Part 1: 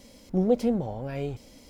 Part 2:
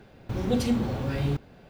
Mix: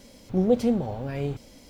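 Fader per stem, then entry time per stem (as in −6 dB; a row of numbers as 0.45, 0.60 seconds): +1.0, −11.5 decibels; 0.00, 0.00 seconds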